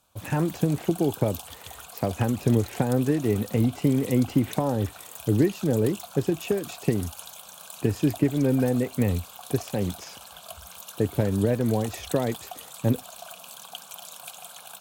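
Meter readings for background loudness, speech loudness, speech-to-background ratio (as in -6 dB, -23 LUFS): -40.5 LUFS, -26.0 LUFS, 14.5 dB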